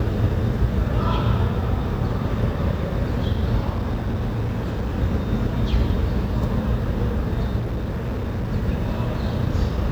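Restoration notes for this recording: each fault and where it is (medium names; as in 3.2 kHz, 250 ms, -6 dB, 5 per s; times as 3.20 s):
3.73–4.96 s: clipped -20 dBFS
7.58–8.52 s: clipped -22 dBFS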